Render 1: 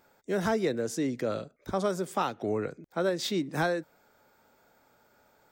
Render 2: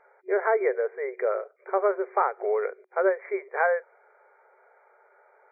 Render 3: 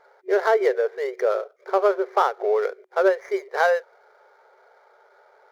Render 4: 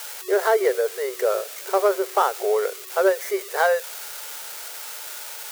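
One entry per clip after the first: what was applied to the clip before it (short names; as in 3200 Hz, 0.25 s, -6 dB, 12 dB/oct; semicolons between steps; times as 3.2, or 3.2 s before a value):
FFT band-pass 370–2400 Hz; gain +6 dB
median filter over 15 samples; gain +4.5 dB
switching spikes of -21.5 dBFS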